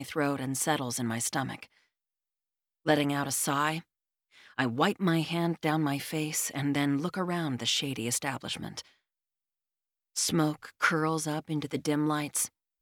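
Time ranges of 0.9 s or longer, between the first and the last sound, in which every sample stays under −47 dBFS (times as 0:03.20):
0:01.66–0:02.86
0:08.81–0:10.16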